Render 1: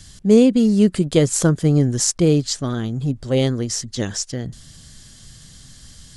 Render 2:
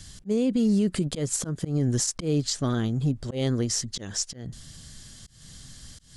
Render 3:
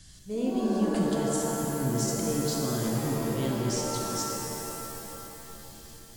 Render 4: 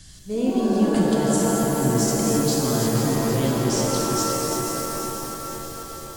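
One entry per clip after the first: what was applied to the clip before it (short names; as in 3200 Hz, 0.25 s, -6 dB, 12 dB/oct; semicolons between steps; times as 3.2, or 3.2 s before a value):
auto swell 0.233 s; limiter -14 dBFS, peak gain reduction 10.5 dB; gain -2 dB
shimmer reverb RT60 3.1 s, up +7 st, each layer -2 dB, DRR -1.5 dB; gain -8 dB
regenerating reverse delay 0.243 s, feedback 73%, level -7 dB; band-limited delay 0.573 s, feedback 57%, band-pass 840 Hz, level -9 dB; gain +6 dB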